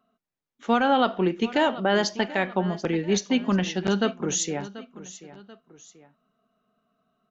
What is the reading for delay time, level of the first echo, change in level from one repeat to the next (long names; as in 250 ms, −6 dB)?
736 ms, −16.5 dB, −7.5 dB